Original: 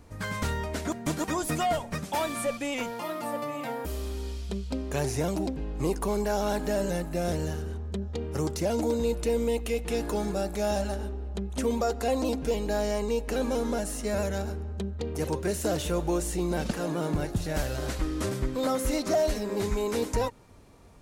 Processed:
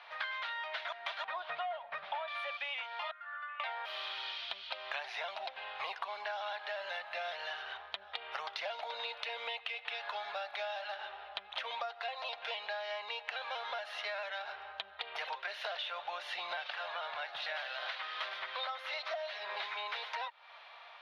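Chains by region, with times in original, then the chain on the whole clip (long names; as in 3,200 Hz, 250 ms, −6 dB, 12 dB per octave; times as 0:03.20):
0:01.24–0:02.28: spectral tilt −4 dB per octave + linearly interpolated sample-rate reduction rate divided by 4×
0:03.11–0:03.60: resonant band-pass 1,500 Hz, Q 14 + comb filter 2.8 ms, depth 69%
whole clip: elliptic band-pass filter 670–3,600 Hz, stop band 40 dB; tilt shelving filter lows −8 dB; downward compressor 12 to 1, threshold −45 dBFS; level +8.5 dB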